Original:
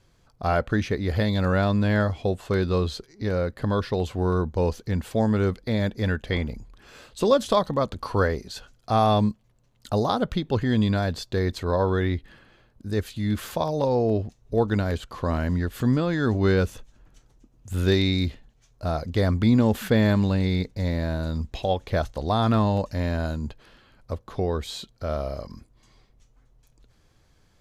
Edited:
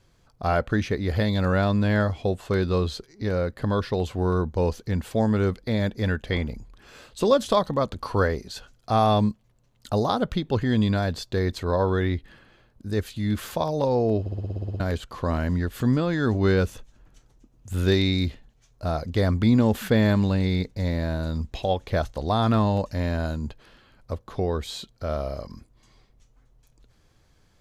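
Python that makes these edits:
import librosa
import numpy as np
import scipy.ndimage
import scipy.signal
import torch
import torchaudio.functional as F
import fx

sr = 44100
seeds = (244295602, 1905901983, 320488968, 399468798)

y = fx.edit(x, sr, fx.stutter_over(start_s=14.2, slice_s=0.06, count=10), tone=tone)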